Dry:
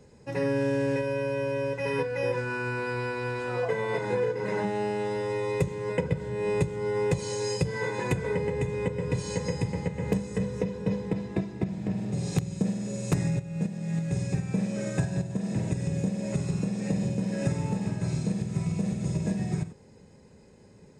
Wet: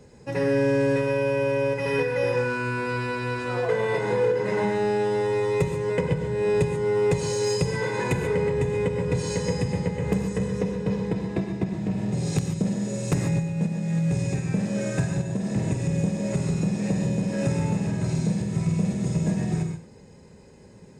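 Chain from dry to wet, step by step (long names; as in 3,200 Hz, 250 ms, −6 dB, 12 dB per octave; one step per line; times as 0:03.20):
in parallel at −5 dB: gain into a clipping stage and back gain 27.5 dB
on the sum: reverb whose tail is shaped and stops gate 160 ms rising, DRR 6 dB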